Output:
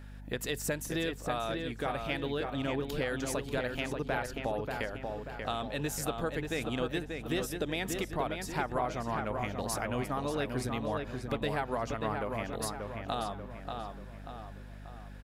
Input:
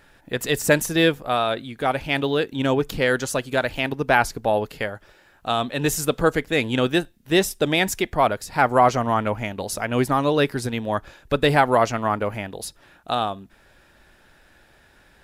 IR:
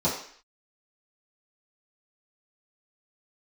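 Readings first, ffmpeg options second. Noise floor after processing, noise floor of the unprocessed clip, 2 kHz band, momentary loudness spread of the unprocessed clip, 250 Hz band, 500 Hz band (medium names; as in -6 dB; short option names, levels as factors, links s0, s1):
-46 dBFS, -56 dBFS, -13.0 dB, 10 LU, -11.0 dB, -12.5 dB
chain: -filter_complex "[0:a]acompressor=threshold=0.0398:ratio=4,asplit=2[s0][s1];[s1]adelay=586,lowpass=f=3200:p=1,volume=0.596,asplit=2[s2][s3];[s3]adelay=586,lowpass=f=3200:p=1,volume=0.49,asplit=2[s4][s5];[s5]adelay=586,lowpass=f=3200:p=1,volume=0.49,asplit=2[s6][s7];[s7]adelay=586,lowpass=f=3200:p=1,volume=0.49,asplit=2[s8][s9];[s9]adelay=586,lowpass=f=3200:p=1,volume=0.49,asplit=2[s10][s11];[s11]adelay=586,lowpass=f=3200:p=1,volume=0.49[s12];[s0][s2][s4][s6][s8][s10][s12]amix=inputs=7:normalize=0,aeval=exprs='val(0)+0.00891*(sin(2*PI*50*n/s)+sin(2*PI*2*50*n/s)/2+sin(2*PI*3*50*n/s)/3+sin(2*PI*4*50*n/s)/4+sin(2*PI*5*50*n/s)/5)':c=same,volume=0.596"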